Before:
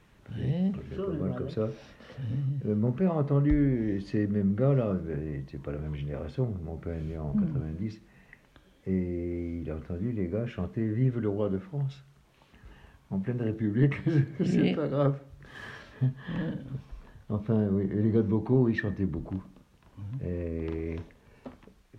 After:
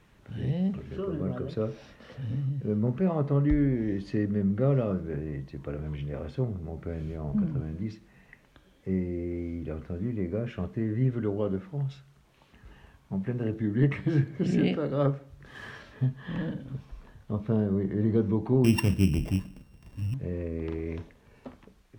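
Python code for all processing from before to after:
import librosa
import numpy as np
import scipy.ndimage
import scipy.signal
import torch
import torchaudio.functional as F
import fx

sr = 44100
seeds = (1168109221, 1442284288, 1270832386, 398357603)

y = fx.chain(x, sr, fx.sample_sort(block=16),
    fx.low_shelf(hz=240.0, db=10.5), at=(18.64, 20.14))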